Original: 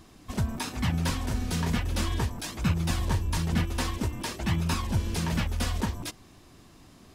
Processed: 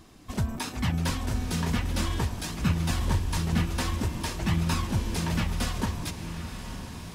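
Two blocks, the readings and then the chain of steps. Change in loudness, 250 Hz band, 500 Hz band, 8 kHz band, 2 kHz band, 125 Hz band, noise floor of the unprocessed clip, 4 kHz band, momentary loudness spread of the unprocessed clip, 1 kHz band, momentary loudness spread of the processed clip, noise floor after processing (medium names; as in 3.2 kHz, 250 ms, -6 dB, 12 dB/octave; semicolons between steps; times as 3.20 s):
0.0 dB, +1.0 dB, +0.5 dB, +0.5 dB, +0.5 dB, +0.5 dB, -54 dBFS, +0.5 dB, 5 LU, +0.5 dB, 9 LU, -42 dBFS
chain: echo that smears into a reverb 1032 ms, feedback 54%, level -9.5 dB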